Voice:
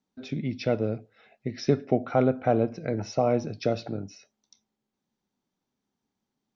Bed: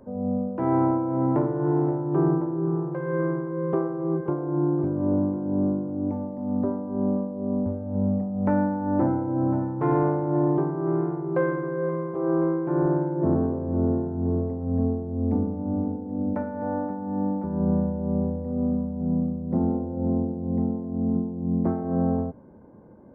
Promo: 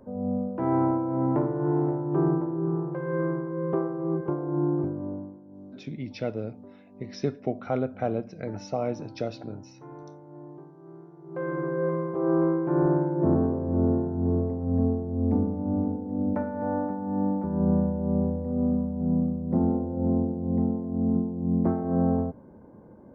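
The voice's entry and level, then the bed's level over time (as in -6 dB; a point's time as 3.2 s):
5.55 s, -5.0 dB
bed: 4.81 s -2 dB
5.48 s -22 dB
11.11 s -22 dB
11.61 s 0 dB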